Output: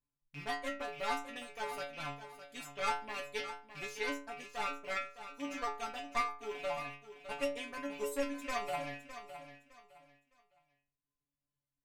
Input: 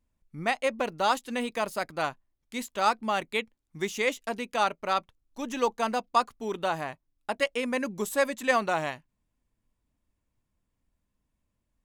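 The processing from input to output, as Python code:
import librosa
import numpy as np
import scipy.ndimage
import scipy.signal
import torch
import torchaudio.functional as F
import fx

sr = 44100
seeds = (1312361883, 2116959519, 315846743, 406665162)

p1 = fx.rattle_buzz(x, sr, strikes_db=-51.0, level_db=-24.0)
p2 = fx.dereverb_blind(p1, sr, rt60_s=0.94)
p3 = fx.cheby_harmonics(p2, sr, harmonics=(4,), levels_db=(-10,), full_scale_db=-9.5)
p4 = fx.stiff_resonator(p3, sr, f0_hz=140.0, decay_s=0.46, stiffness=0.002)
p5 = p4 + fx.echo_feedback(p4, sr, ms=610, feedback_pct=27, wet_db=-11.5, dry=0)
y = F.gain(torch.from_numpy(p5), 2.0).numpy()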